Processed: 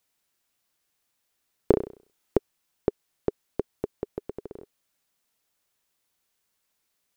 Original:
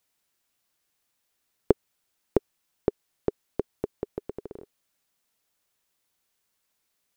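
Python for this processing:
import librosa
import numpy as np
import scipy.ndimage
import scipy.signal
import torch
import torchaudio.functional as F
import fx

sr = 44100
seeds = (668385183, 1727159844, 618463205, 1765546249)

y = fx.room_flutter(x, sr, wall_m=5.6, rt60_s=0.41, at=(1.71, 2.37), fade=0.02)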